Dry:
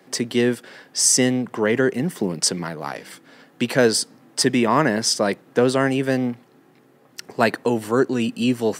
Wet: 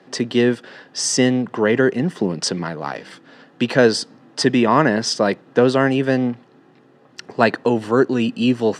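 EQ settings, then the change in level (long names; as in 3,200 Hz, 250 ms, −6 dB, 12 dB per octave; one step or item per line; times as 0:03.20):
low-pass filter 4,700 Hz 12 dB per octave
notch filter 2,200 Hz, Q 10
+3.0 dB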